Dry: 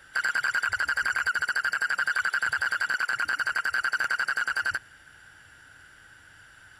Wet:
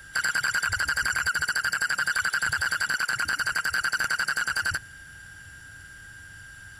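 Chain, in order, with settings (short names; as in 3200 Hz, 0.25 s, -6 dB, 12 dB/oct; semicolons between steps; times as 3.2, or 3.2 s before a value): tone controls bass +12 dB, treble +10 dB; whine 1600 Hz -45 dBFS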